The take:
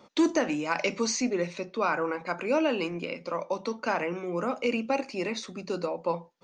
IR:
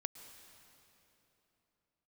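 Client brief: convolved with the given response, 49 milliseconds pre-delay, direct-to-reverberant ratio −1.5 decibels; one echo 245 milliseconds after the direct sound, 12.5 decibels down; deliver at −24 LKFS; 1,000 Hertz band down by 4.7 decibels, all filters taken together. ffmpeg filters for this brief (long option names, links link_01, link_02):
-filter_complex "[0:a]equalizer=frequency=1000:width_type=o:gain=-6,aecho=1:1:245:0.237,asplit=2[link_01][link_02];[1:a]atrim=start_sample=2205,adelay=49[link_03];[link_02][link_03]afir=irnorm=-1:irlink=0,volume=3.5dB[link_04];[link_01][link_04]amix=inputs=2:normalize=0,volume=2.5dB"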